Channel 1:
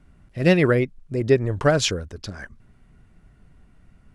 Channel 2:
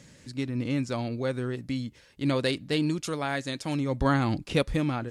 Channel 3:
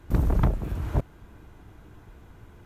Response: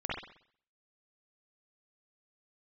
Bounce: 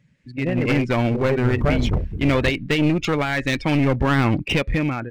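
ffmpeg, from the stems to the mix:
-filter_complex "[0:a]asubboost=boost=5:cutoff=120,volume=0.266[s0];[1:a]equalizer=f=2300:t=o:w=1.2:g=11.5,volume=1.19[s1];[2:a]adelay=1500,volume=0.299[s2];[s0][s1]amix=inputs=2:normalize=0,highshelf=f=3500:g=-9,alimiter=limit=0.112:level=0:latency=1:release=81,volume=1[s3];[s2][s3]amix=inputs=2:normalize=0,afftdn=nr=19:nf=-37,dynaudnorm=f=150:g=7:m=3.55,aeval=exprs='clip(val(0),-1,0.1)':c=same"

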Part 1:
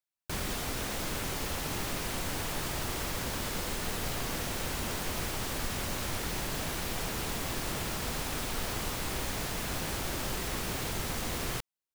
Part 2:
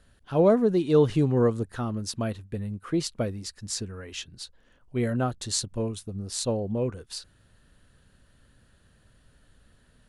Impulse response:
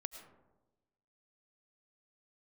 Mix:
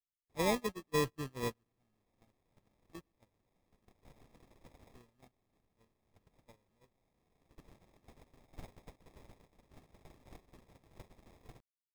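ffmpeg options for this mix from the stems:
-filter_complex "[0:a]volume=0.841[s0];[1:a]volume=0.224,asplit=4[s1][s2][s3][s4];[s2]volume=0.158[s5];[s3]volume=0.178[s6];[s4]apad=whole_len=526625[s7];[s0][s7]sidechaincompress=threshold=0.00794:ratio=5:attack=47:release=1210[s8];[2:a]atrim=start_sample=2205[s9];[s5][s9]afir=irnorm=-1:irlink=0[s10];[s6]aecho=0:1:123|246|369|492|615|738|861|984:1|0.53|0.281|0.149|0.0789|0.0418|0.0222|0.0117[s11];[s8][s1][s10][s11]amix=inputs=4:normalize=0,agate=range=0.0112:threshold=0.0282:ratio=16:detection=peak,equalizer=f=6400:t=o:w=1.8:g=-8.5,acrusher=samples=30:mix=1:aa=0.000001"

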